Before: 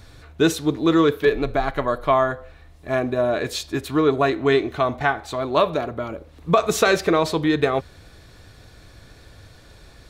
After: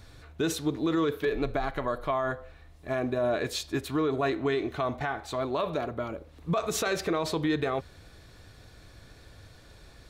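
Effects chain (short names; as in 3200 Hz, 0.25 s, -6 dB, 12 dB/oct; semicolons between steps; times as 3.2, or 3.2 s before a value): limiter -14 dBFS, peak gain reduction 10.5 dB; gain -5 dB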